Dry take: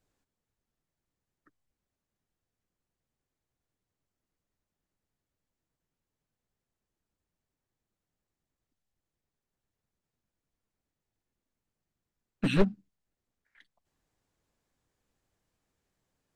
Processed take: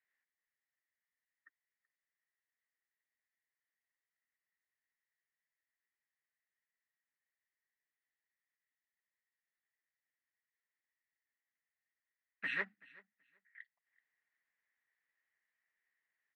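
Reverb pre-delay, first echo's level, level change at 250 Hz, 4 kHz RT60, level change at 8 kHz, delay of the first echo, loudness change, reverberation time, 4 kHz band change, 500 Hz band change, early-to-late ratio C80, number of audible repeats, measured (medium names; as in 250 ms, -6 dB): no reverb, -23.0 dB, -28.5 dB, no reverb, under -15 dB, 380 ms, -10.5 dB, no reverb, -11.0 dB, -22.0 dB, no reverb, 1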